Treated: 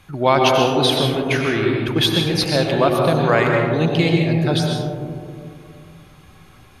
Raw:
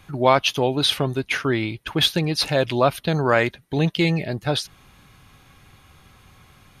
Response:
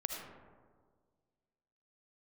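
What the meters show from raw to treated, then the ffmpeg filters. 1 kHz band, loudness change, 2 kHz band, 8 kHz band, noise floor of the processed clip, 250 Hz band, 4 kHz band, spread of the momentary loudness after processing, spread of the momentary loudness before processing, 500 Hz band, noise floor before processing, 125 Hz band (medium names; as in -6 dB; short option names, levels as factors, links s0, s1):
+4.0 dB, +3.5 dB, +2.5 dB, +2.0 dB, -47 dBFS, +5.0 dB, +2.0 dB, 10 LU, 6 LU, +4.5 dB, -53 dBFS, +5.0 dB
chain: -filter_complex "[1:a]atrim=start_sample=2205,asetrate=26019,aresample=44100[s0];[0:a][s0]afir=irnorm=-1:irlink=0,volume=0.891"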